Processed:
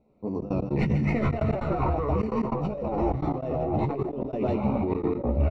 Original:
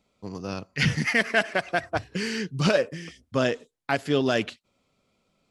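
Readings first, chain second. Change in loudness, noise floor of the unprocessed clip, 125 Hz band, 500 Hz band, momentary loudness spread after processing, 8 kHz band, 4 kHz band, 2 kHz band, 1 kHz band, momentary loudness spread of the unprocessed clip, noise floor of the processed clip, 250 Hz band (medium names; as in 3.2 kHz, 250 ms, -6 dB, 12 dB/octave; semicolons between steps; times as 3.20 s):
-1.5 dB, -75 dBFS, +4.5 dB, -0.5 dB, 4 LU, under -20 dB, under -20 dB, -15.0 dB, +1.5 dB, 13 LU, -37 dBFS, +3.0 dB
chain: tracing distortion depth 0.033 ms; ever faster or slower copies 85 ms, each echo -6 st, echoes 3; bass shelf 110 Hz -10.5 dB; hum notches 50/100/150/200 Hz; feedback delay 146 ms, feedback 31%, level -8 dB; vibrato 4.7 Hz 50 cents; boxcar filter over 27 samples; doubling 14 ms -3 dB; compressor with a negative ratio -30 dBFS, ratio -1; tilt EQ -1.5 dB/octave; trance gate "xxxx.x.xx" 149 bpm -24 dB; decay stretcher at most 78 dB/s; trim +1.5 dB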